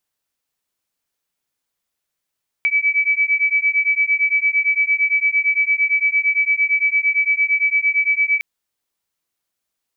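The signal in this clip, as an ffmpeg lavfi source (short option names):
-f lavfi -i "aevalsrc='0.133*(sin(2*PI*2290*t)+sin(2*PI*2298.8*t))':d=5.76:s=44100"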